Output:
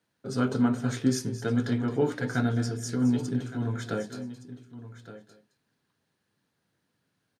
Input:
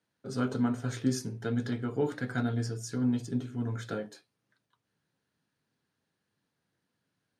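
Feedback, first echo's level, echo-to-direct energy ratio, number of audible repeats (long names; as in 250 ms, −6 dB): repeats not evenly spaced, −13.5 dB, −11.0 dB, 3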